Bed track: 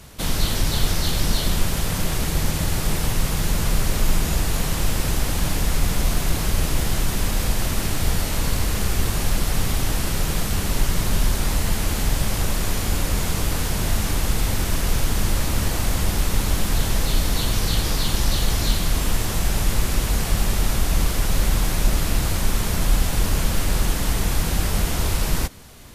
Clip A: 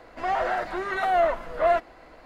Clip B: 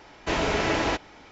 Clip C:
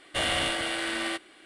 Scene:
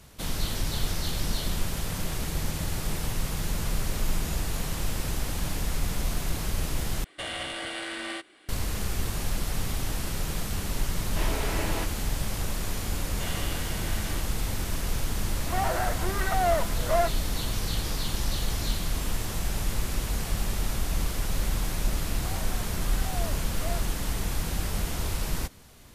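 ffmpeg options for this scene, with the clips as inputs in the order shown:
-filter_complex "[3:a]asplit=2[a][b];[1:a]asplit=2[c][d];[0:a]volume=-8dB[e];[a]alimiter=limit=-21.5dB:level=0:latency=1:release=134[f];[e]asplit=2[g][h];[g]atrim=end=7.044[i];[f]atrim=end=1.45,asetpts=PTS-STARTPTS,volume=-3dB[j];[h]atrim=start=8.486[k];[2:a]atrim=end=1.31,asetpts=PTS-STARTPTS,volume=-8.5dB,afade=t=in:d=0.004:c=hsin,afade=t=out:st=1.306:d=0.004:c=hsin,adelay=10890[l];[b]atrim=end=1.45,asetpts=PTS-STARTPTS,volume=-11.5dB,afade=t=in:d=0.004:c=hsin,afade=t=out:st=1.446:d=0.004:c=hsin,adelay=13050[m];[c]atrim=end=2.25,asetpts=PTS-STARTPTS,volume=-3.5dB,afade=t=in:d=0.004:c=hsin,afade=t=out:st=2.246:d=0.004:c=hsin,adelay=15290[n];[d]atrim=end=2.25,asetpts=PTS-STARTPTS,volume=-17.5dB,afade=t=in:d=0.004:c=hsin,afade=t=out:st=2.246:d=0.004:c=hsin,adelay=22010[o];[i][j]acrossfade=d=0.004:c1=hsin:c2=hsin[p];[p][k]acrossfade=d=0.004:c1=hsin:c2=hsin[q];[q][l][m][n][o]amix=inputs=5:normalize=0"

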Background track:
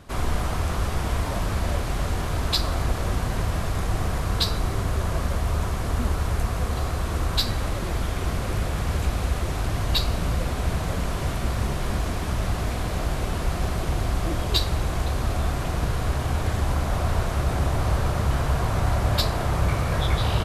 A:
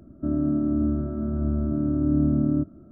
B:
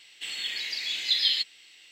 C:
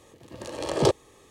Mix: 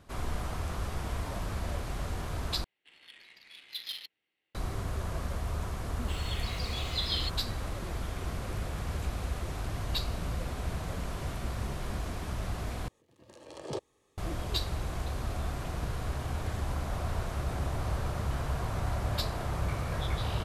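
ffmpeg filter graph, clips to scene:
-filter_complex "[2:a]asplit=2[a][b];[0:a]volume=-9.5dB[c];[a]adynamicsmooth=sensitivity=2.5:basefreq=1.1k[d];[b]aeval=exprs='val(0)*gte(abs(val(0)),0.00562)':c=same[e];[c]asplit=3[f][g][h];[f]atrim=end=2.644[i];[d]atrim=end=1.91,asetpts=PTS-STARTPTS,volume=-14.5dB[j];[g]atrim=start=4.546:end=12.884[k];[3:a]atrim=end=1.3,asetpts=PTS-STARTPTS,volume=-16dB[l];[h]atrim=start=14.176[m];[e]atrim=end=1.91,asetpts=PTS-STARTPTS,volume=-9dB,afade=t=in:d=0.004:c=hsin,afade=t=out:st=1.906:d=0.004:c=hsin,adelay=5870[n];[i][j]acrossfade=d=0.004:c1=hsin:c2=hsin[o];[o][k]acrossfade=d=0.004:c1=hsin:c2=hsin[p];[p][l]acrossfade=d=0.004:c1=hsin:c2=hsin[q];[q][m]acrossfade=d=0.004:c1=hsin:c2=hsin[r];[r][n]amix=inputs=2:normalize=0"

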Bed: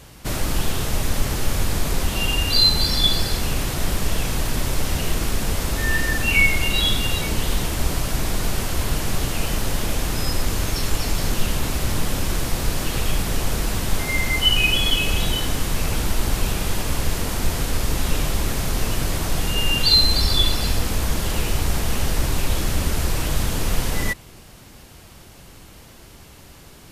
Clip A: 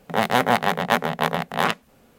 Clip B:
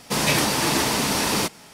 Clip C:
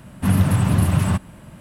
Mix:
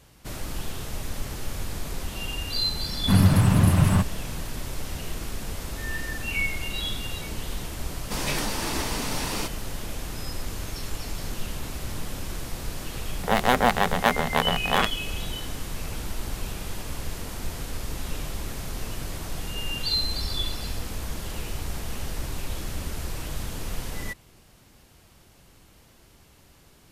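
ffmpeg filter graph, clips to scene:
-filter_complex "[0:a]volume=-10.5dB[a];[3:a]atrim=end=1.6,asetpts=PTS-STARTPTS,volume=-1dB,afade=t=in:d=0.004:c=hsin,afade=t=out:st=1.596:d=0.004:c=hsin,adelay=2850[b];[2:a]atrim=end=1.73,asetpts=PTS-STARTPTS,volume=-8.5dB,afade=t=in:d=0.004:c=hsin,afade=t=out:st=1.726:d=0.004:c=hsin,adelay=8000[c];[1:a]atrim=end=2.18,asetpts=PTS-STARTPTS,volume=-1.5dB,afade=t=in:d=0.004:c=hsin,afade=t=out:st=2.176:d=0.004:c=hsin,adelay=13140[d];[a][b][c][d]amix=inputs=4:normalize=0"

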